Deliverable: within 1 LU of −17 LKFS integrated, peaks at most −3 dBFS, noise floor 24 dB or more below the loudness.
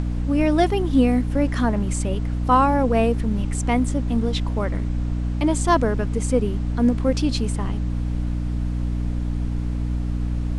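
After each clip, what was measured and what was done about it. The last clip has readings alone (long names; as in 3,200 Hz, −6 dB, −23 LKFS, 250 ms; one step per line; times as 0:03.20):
mains hum 60 Hz; hum harmonics up to 300 Hz; level of the hum −22 dBFS; background noise floor −25 dBFS; target noise floor −47 dBFS; integrated loudness −22.5 LKFS; sample peak −5.5 dBFS; target loudness −17.0 LKFS
→ mains-hum notches 60/120/180/240/300 Hz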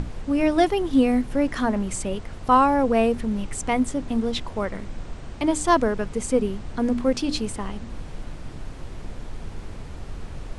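mains hum none found; background noise floor −38 dBFS; target noise floor −48 dBFS
→ noise reduction from a noise print 10 dB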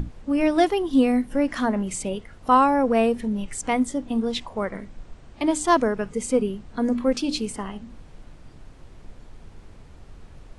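background noise floor −47 dBFS; target noise floor −48 dBFS
→ noise reduction from a noise print 6 dB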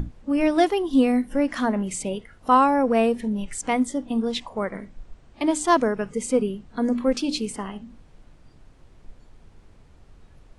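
background noise floor −53 dBFS; integrated loudness −23.5 LKFS; sample peak −6.5 dBFS; target loudness −17.0 LKFS
→ level +6.5 dB
brickwall limiter −3 dBFS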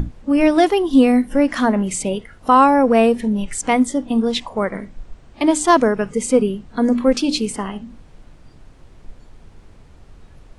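integrated loudness −17.0 LKFS; sample peak −3.0 dBFS; background noise floor −46 dBFS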